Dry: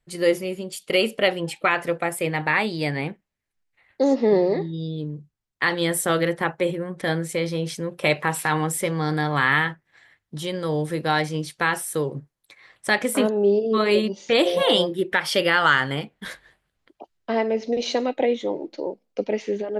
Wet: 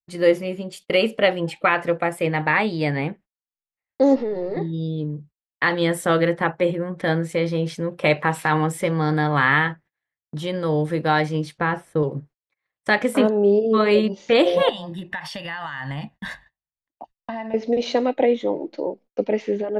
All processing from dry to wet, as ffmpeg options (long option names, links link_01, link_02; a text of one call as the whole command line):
ffmpeg -i in.wav -filter_complex "[0:a]asettb=1/sr,asplit=3[link_01][link_02][link_03];[link_01]atrim=end=4.164[link_04];[link_02]atrim=start=4.16:end=4.57,asetpts=PTS-STARTPTS,afade=type=in:duration=0.004:curve=qsin,afade=type=out:start_time=0.406:duration=0.004:curve=qsin,aeval=exprs='if(lt(val(0),0),0.708*val(0),val(0))':channel_layout=same,aecho=1:1:2.2:0.34,atrim=end_sample=18081,acompressor=threshold=-25dB:ratio=6:attack=3.2:release=140:knee=1:detection=peak[link_05];[link_03]atrim=start=4.566[link_06];[link_04][link_05]acrossfade=duration=0.004:curve1=hsin:curve2=qsin[link_07];[link_07][link_06]acrossfade=duration=0.004:curve1=qsin:curve2=hsin,asettb=1/sr,asplit=3[link_08][link_09][link_10];[link_08]atrim=end=11.584[link_11];[link_09]atrim=start=11.58:end=12.03,asetpts=PTS-STARTPTS,afade=type=in:duration=0.004:curve=qsin,afade=type=out:start_time=0.446:duration=0.004:curve=qsin,lowpass=frequency=1200:poles=1,equalizer=frequency=83:width_type=o:width=2:gain=7[link_12];[link_10]atrim=start=12.026[link_13];[link_11][link_12]acrossfade=duration=0.004:curve1=hsin:curve2=qsin[link_14];[link_14][link_13]acrossfade=duration=0.004:curve1=qsin:curve2=hsin,asettb=1/sr,asplit=3[link_15][link_16][link_17];[link_15]atrim=end=14.694[link_18];[link_16]atrim=start=14.69:end=17.54,asetpts=PTS-STARTPTS,afade=type=in:duration=0.004:curve=qsin,afade=type=out:start_time=2.846:duration=0.004:curve=qsin,equalizer=frequency=370:width_type=o:width=0.71:gain=-8,acompressor=threshold=-29dB:ratio=12:attack=3.2:release=140:knee=1:detection=peak,aecho=1:1:1.1:0.7,atrim=end_sample=125685[link_19];[link_17]atrim=start=17.536[link_20];[link_18][link_19]acrossfade=duration=0.004:curve1=hsin:curve2=qsin[link_21];[link_21][link_20]acrossfade=duration=0.004:curve1=qsin:curve2=hsin,lowpass=frequency=2300:poles=1,agate=range=-33dB:threshold=-47dB:ratio=16:detection=peak,bandreject=frequency=380:width=12,volume=3.5dB" out.wav